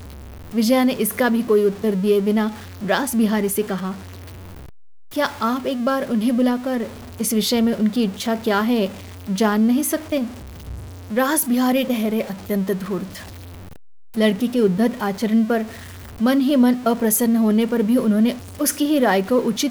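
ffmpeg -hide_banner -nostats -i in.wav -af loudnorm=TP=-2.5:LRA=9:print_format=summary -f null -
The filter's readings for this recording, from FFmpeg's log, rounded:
Input Integrated:    -19.6 LUFS
Input True Peak:      -4.5 dBTP
Input LRA:             4.3 LU
Input Threshold:     -30.2 LUFS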